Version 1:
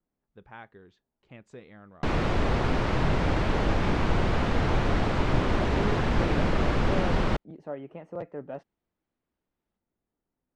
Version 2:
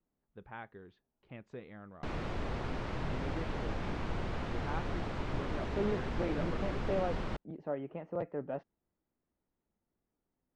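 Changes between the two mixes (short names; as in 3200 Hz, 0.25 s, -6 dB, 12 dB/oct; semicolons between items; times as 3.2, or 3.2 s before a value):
speech: add air absorption 170 m; background -12.0 dB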